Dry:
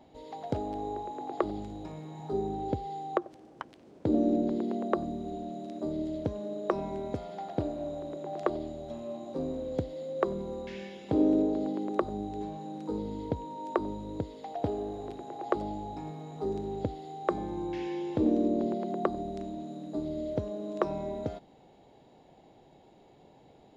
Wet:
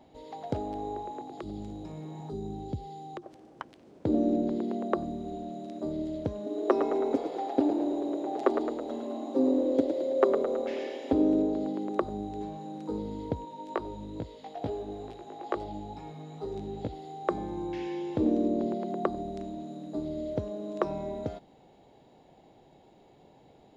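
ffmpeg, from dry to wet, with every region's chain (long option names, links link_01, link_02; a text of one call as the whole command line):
ffmpeg -i in.wav -filter_complex "[0:a]asettb=1/sr,asplit=3[link_01][link_02][link_03];[link_01]atrim=end=1.214[link_04];[link_02]atrim=start=1.21:end=3.23,asetpts=PTS-STARTPTS,afade=type=in:duration=0.004:curve=qsin,afade=type=out:start_time=2.016:duration=0.004:curve=qsin,acrossover=split=200|3000[link_05][link_06][link_07];[link_06]acompressor=threshold=-45dB:ratio=5:attack=3.2:release=140:knee=2.83:detection=peak[link_08];[link_05][link_08][link_07]amix=inputs=3:normalize=0,equalizer=frequency=330:width=0.55:gain=5[link_09];[link_03]atrim=start=3.226[link_10];[link_04][link_09]acrossfade=duration=0.004:curve1=hsin:curve2=qsin[link_11];[link_11][link_10]acrossfade=duration=0.004:curve1=qsin:curve2=hsin,asettb=1/sr,asplit=3[link_12][link_13][link_14];[link_12]atrim=end=6.464[link_15];[link_13]atrim=start=6.46:end=11.13,asetpts=PTS-STARTPTS,afade=type=in:duration=0.004:curve=qsin,afade=type=out:start_time=4.666:duration=0.004:curve=qsin,lowshelf=frequency=190:width_type=q:width=3:gain=-12.5,aecho=1:1:7.5:0.8,atrim=end_sample=205947,asplit=8[link_16][link_17][link_18][link_19][link_20][link_21][link_22][link_23];[link_17]adelay=108,afreqshift=40,volume=-7.5dB[link_24];[link_18]adelay=216,afreqshift=80,volume=-12.9dB[link_25];[link_19]adelay=324,afreqshift=120,volume=-18.2dB[link_26];[link_20]adelay=432,afreqshift=160,volume=-23.6dB[link_27];[link_21]adelay=540,afreqshift=200,volume=-28.9dB[link_28];[link_22]adelay=648,afreqshift=240,volume=-34.3dB[link_29];[link_23]adelay=756,afreqshift=280,volume=-39.6dB[link_30];[link_16][link_24][link_25][link_26][link_27][link_28][link_29][link_30]amix=inputs=8:normalize=0,atrim=end_sample=205947[link_31];[link_14]atrim=start=11.126[link_32];[link_15][link_31]acrossfade=duration=0.004:curve1=hsin:curve2=qsin[link_33];[link_33][link_32]acrossfade=duration=0.004:curve1=qsin:curve2=hsin,asettb=1/sr,asplit=3[link_34][link_35][link_36];[link_34]atrim=end=13.454[link_37];[link_35]atrim=start=13.45:end=16.93,asetpts=PTS-STARTPTS,afade=type=in:duration=0.004:curve=qsin,afade=type=out:start_time=3.476:duration=0.004:curve=qsin,equalizer=frequency=3100:width_type=o:width=1.7:gain=4.5,flanger=delay=17:depth=2.9:speed=2.3[link_38];[link_36]atrim=start=16.926[link_39];[link_37][link_38]acrossfade=duration=0.004:curve1=hsin:curve2=qsin[link_40];[link_40][link_39]acrossfade=duration=0.004:curve1=qsin:curve2=hsin" out.wav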